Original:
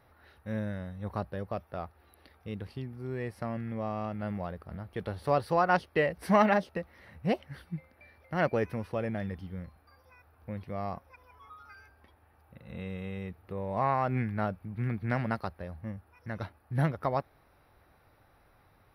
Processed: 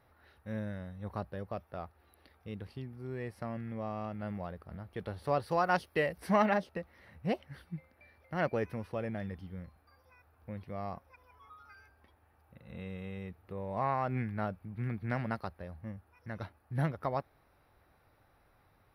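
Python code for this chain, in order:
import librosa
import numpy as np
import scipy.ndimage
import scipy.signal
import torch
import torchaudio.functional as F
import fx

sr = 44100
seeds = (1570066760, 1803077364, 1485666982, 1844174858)

y = fx.high_shelf(x, sr, hz=5700.0, db=11.0, at=(5.51, 6.2))
y = y * librosa.db_to_amplitude(-4.0)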